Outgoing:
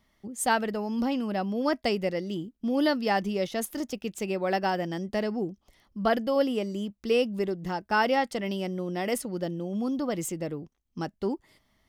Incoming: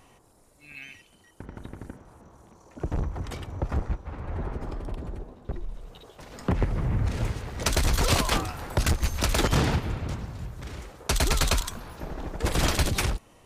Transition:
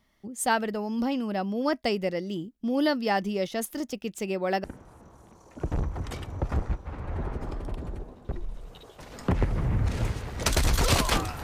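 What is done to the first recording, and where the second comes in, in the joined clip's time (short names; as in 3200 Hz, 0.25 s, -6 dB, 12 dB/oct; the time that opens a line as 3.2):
outgoing
4.64 switch to incoming from 1.84 s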